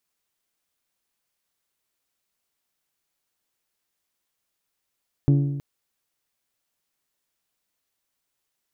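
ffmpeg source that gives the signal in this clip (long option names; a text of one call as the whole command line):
ffmpeg -f lavfi -i "aevalsrc='0.224*pow(10,-3*t/1.15)*sin(2*PI*141*t)+0.1*pow(10,-3*t/0.934)*sin(2*PI*282*t)+0.0447*pow(10,-3*t/0.884)*sin(2*PI*338.4*t)+0.02*pow(10,-3*t/0.827)*sin(2*PI*423*t)+0.00891*pow(10,-3*t/0.759)*sin(2*PI*564*t)+0.00398*pow(10,-3*t/0.71)*sin(2*PI*705*t)+0.00178*pow(10,-3*t/0.672)*sin(2*PI*846*t)+0.000794*pow(10,-3*t/0.616)*sin(2*PI*1128*t)':duration=0.32:sample_rate=44100" out.wav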